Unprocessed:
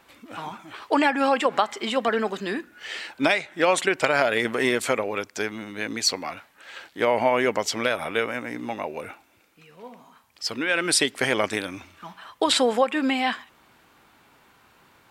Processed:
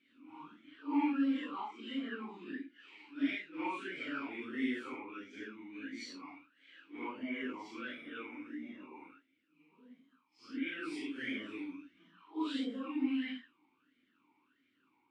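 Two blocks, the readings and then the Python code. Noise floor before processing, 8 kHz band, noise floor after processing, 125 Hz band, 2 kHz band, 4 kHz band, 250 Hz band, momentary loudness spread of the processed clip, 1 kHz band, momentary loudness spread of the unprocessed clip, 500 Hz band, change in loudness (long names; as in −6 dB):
−59 dBFS, −33.5 dB, −76 dBFS, −22.5 dB, −17.5 dB, −21.0 dB, −7.5 dB, 18 LU, −19.5 dB, 17 LU, −25.0 dB, −15.5 dB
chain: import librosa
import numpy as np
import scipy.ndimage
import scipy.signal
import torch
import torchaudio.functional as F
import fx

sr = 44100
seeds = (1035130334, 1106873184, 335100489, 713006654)

y = fx.phase_scramble(x, sr, seeds[0], window_ms=200)
y = fx.vowel_sweep(y, sr, vowels='i-u', hz=1.5)
y = F.gain(torch.from_numpy(y), -4.5).numpy()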